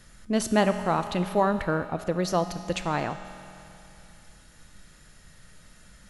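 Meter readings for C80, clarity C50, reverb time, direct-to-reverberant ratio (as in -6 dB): 10.5 dB, 9.5 dB, 2.9 s, 8.5 dB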